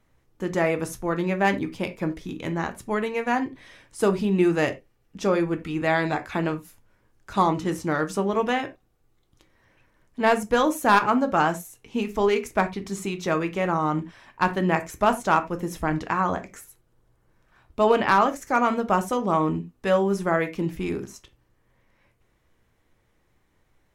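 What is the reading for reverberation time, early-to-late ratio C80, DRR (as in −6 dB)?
non-exponential decay, 22.5 dB, 7.5 dB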